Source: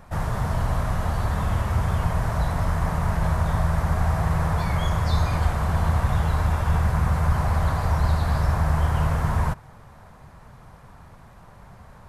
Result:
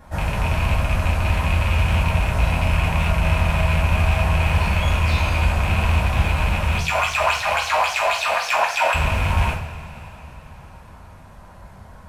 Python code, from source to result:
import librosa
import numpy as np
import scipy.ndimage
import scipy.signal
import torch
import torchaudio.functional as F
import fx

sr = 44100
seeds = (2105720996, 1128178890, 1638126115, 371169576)

y = fx.rattle_buzz(x, sr, strikes_db=-21.0, level_db=-14.0)
y = fx.notch(y, sr, hz=1200.0, q=24.0)
y = fx.filter_lfo_highpass(y, sr, shape='sine', hz=3.7, low_hz=580.0, high_hz=6300.0, q=7.0, at=(6.77, 8.94), fade=0.02)
y = 10.0 ** (-12.5 / 20.0) * np.tanh(y / 10.0 ** (-12.5 / 20.0))
y = fx.rev_double_slope(y, sr, seeds[0], early_s=0.44, late_s=3.9, knee_db=-20, drr_db=-4.5)
y = y * librosa.db_to_amplitude(-2.0)